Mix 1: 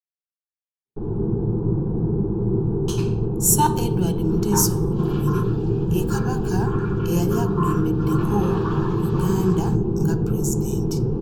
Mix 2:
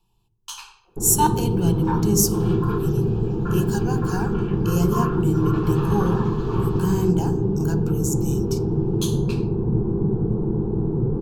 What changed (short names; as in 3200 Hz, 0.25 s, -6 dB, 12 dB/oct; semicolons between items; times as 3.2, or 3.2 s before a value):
speech: entry -2.40 s; second sound: entry -2.65 s